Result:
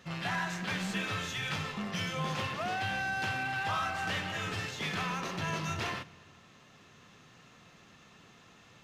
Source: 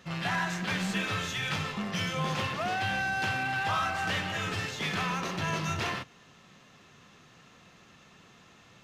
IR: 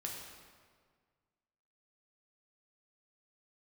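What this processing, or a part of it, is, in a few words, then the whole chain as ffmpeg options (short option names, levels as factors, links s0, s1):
ducked reverb: -filter_complex "[0:a]asplit=3[s0][s1][s2];[1:a]atrim=start_sample=2205[s3];[s1][s3]afir=irnorm=-1:irlink=0[s4];[s2]apad=whole_len=389505[s5];[s4][s5]sidechaincompress=threshold=0.0112:ratio=4:attack=16:release=1210,volume=0.531[s6];[s0][s6]amix=inputs=2:normalize=0,volume=0.631"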